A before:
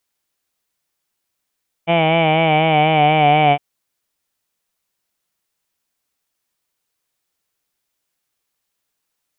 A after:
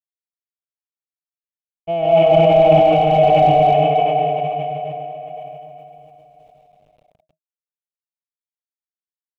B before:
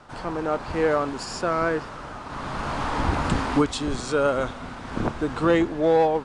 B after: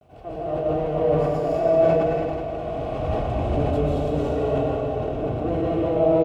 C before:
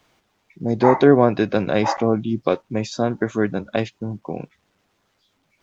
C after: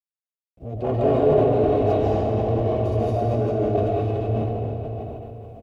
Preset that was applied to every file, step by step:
comb filter that takes the minimum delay 2.7 ms; on a send: feedback delay 776 ms, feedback 19%, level -20.5 dB; on the sum: gate with hold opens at -42 dBFS; in parallel at -2 dB: compression, threshold -25 dBFS; on the sum: high-pass 63 Hz; algorithmic reverb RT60 3.9 s, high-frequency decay 0.85×, pre-delay 105 ms, DRR -8.5 dB; word length cut 8-bit, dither none; FFT filter 160 Hz 0 dB, 340 Hz -10 dB, 630 Hz +3 dB, 890 Hz -15 dB, 1.8 kHz -25 dB, 2.7 kHz -14 dB, 4.6 kHz -25 dB; decay stretcher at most 22 dB/s; trim -4.5 dB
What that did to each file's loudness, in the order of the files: +0.5 LU, +1.5 LU, -2.0 LU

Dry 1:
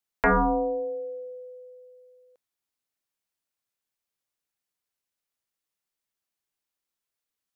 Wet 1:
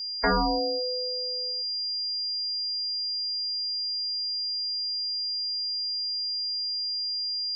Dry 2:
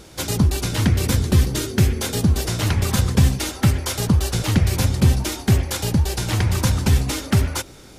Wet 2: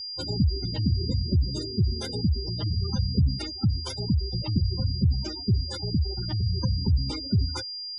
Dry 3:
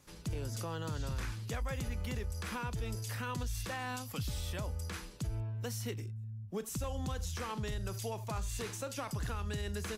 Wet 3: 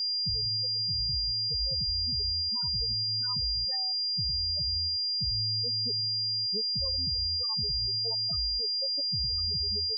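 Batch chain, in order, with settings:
whistle 4.8 kHz -28 dBFS; gain riding within 3 dB 2 s; spectral gate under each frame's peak -15 dB strong; normalise loudness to -27 LUFS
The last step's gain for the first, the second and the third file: -0.5 dB, -7.0 dB, +0.5 dB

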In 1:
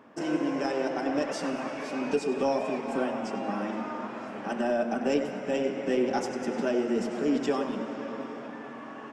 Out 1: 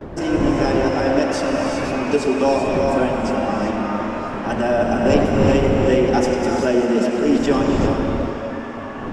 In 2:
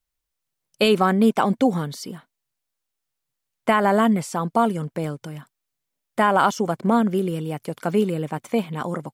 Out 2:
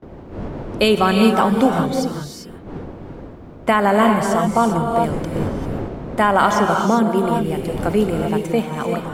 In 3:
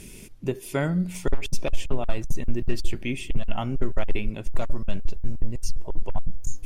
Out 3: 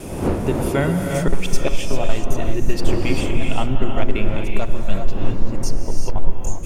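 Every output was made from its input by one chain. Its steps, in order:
wind noise 350 Hz -35 dBFS; gate with hold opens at -35 dBFS; hum notches 60/120/180/240 Hz; gated-style reverb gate 420 ms rising, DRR 2.5 dB; peak normalisation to -2 dBFS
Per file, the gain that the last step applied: +8.5 dB, +2.5 dB, +5.0 dB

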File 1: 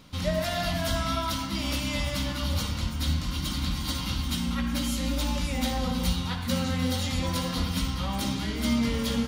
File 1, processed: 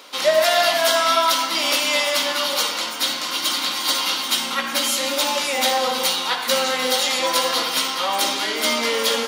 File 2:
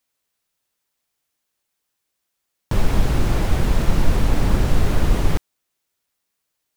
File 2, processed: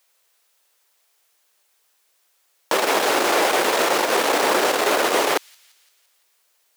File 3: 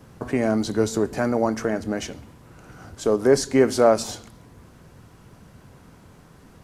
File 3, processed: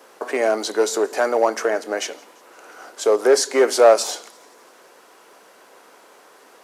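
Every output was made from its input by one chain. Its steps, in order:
feedback echo behind a high-pass 171 ms, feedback 57%, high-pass 3.4 kHz, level -24 dB; in parallel at -9.5 dB: wavefolder -13.5 dBFS; on the sum: high-pass 410 Hz 24 dB/octave; normalise loudness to -19 LUFS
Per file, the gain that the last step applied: +10.5 dB, +9.5 dB, +4.0 dB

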